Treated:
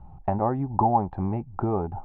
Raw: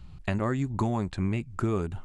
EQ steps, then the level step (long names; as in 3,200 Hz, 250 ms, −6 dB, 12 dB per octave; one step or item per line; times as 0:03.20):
low-pass with resonance 820 Hz, resonance Q 9.3
0.0 dB